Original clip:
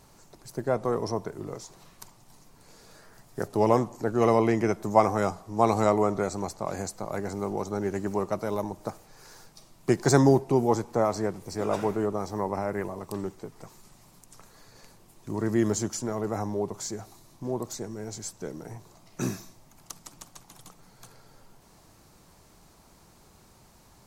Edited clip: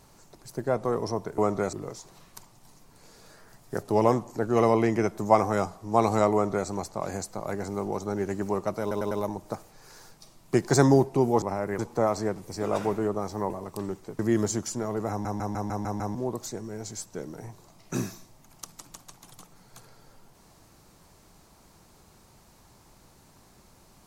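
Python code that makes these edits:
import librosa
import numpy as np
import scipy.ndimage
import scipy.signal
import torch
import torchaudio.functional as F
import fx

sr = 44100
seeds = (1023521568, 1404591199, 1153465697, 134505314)

y = fx.edit(x, sr, fx.duplicate(start_s=5.98, length_s=0.35, to_s=1.38),
    fx.stutter(start_s=8.46, slice_s=0.1, count=4),
    fx.move(start_s=12.48, length_s=0.37, to_s=10.77),
    fx.cut(start_s=13.54, length_s=1.92),
    fx.stutter_over(start_s=16.37, slice_s=0.15, count=7), tone=tone)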